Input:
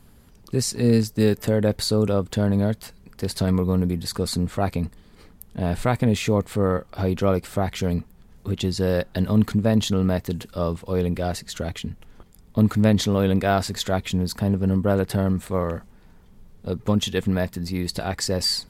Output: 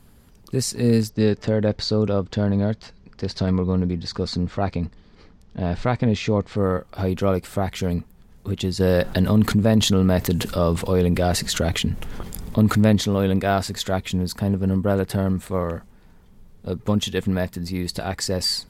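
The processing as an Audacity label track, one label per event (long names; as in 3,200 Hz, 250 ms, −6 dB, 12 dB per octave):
1.090000	6.570000	Chebyshev low-pass filter 5,600 Hz, order 3
8.800000	12.960000	envelope flattener amount 50%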